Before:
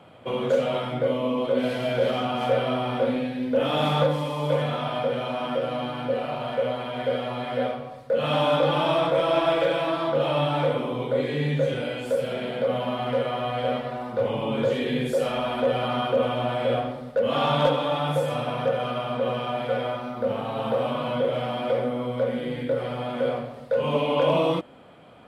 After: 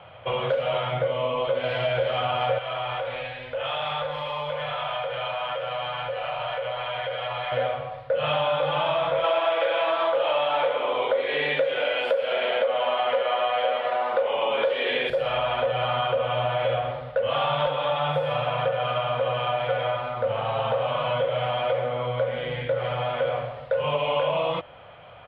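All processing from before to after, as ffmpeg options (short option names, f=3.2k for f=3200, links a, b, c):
-filter_complex "[0:a]asettb=1/sr,asplit=3[a][b][c];[a]atrim=end=2.584[d];[b]atrim=start=2.58:end=7.52,asetpts=PTS-STARTPTS,afade=t=in:d=0.004:c=qsin,afade=t=out:st=4.936:d=0.004:c=qsin,equalizer=f=220:t=o:w=1.9:g=-13.5,acompressor=threshold=-30dB:ratio=4:attack=3.2:release=140:knee=1:detection=peak[e];[c]atrim=start=7.516[f];[d][e]acrossfade=d=0.004:c1=hsin:c2=qsin[g];[g][f]acrossfade=d=0.004:c1=qsin:c2=hsin,asettb=1/sr,asplit=3[h][i][j];[h]atrim=end=9.244[k];[i]atrim=start=9.24:end=15.1,asetpts=PTS-STARTPTS,afade=t=in:d=0.004:c=qsin,afade=t=out:st=5.856:d=0.004:c=qsin,highpass=f=270:w=0.5412,highpass=f=270:w=1.3066,acontrast=82[l];[j]atrim=start=15.096[m];[k][l]acrossfade=d=0.004:c1=hsin:c2=qsin[n];[n][m]acrossfade=d=0.004:c1=qsin:c2=hsin,firequalizer=gain_entry='entry(100,0);entry(240,-21);entry(560,-2);entry(3000,0);entry(6400,-27)':delay=0.05:min_phase=1,acompressor=threshold=-28dB:ratio=6,volume=7dB"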